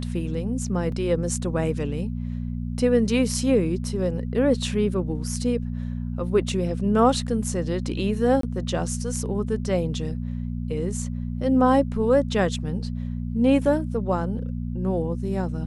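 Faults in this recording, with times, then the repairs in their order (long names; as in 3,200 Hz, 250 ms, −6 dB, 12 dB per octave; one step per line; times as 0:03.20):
mains hum 60 Hz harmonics 4 −29 dBFS
0:00.92: drop-out 2.6 ms
0:08.41–0:08.43: drop-out 23 ms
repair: hum removal 60 Hz, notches 4
repair the gap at 0:00.92, 2.6 ms
repair the gap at 0:08.41, 23 ms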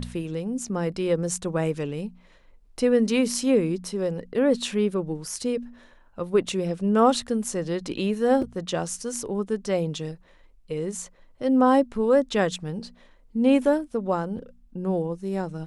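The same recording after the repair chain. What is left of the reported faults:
none of them is left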